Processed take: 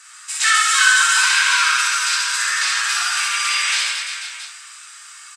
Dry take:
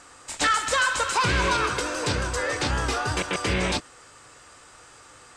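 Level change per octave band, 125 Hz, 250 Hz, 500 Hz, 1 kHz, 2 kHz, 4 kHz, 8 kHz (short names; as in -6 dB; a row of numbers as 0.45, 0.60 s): under -40 dB, under -40 dB, under -20 dB, +4.0 dB, +11.0 dB, +11.5 dB, +13.5 dB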